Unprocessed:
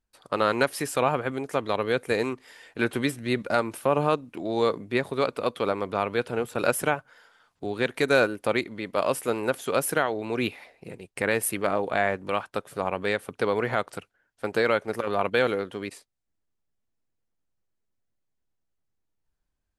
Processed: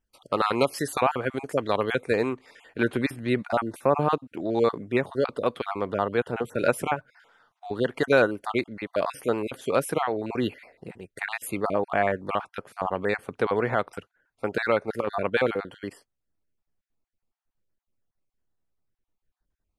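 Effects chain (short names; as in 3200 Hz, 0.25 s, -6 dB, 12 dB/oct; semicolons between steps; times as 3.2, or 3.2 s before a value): random spectral dropouts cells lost 26%; high shelf 3200 Hz -2 dB, from 2.01 s -9 dB; gain +2 dB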